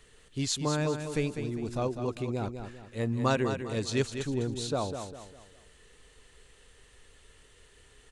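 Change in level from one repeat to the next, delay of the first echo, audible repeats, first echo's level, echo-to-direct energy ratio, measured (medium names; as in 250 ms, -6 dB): -8.5 dB, 200 ms, 4, -8.0 dB, -7.5 dB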